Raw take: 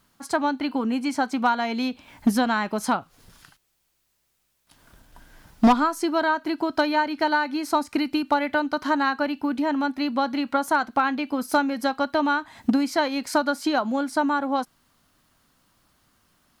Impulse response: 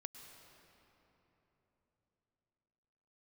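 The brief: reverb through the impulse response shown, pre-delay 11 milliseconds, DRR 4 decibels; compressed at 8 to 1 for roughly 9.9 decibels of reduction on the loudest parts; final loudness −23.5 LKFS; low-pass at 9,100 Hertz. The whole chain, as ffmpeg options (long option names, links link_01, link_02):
-filter_complex "[0:a]lowpass=9100,acompressor=threshold=-23dB:ratio=8,asplit=2[link_01][link_02];[1:a]atrim=start_sample=2205,adelay=11[link_03];[link_02][link_03]afir=irnorm=-1:irlink=0,volume=0.5dB[link_04];[link_01][link_04]amix=inputs=2:normalize=0,volume=3.5dB"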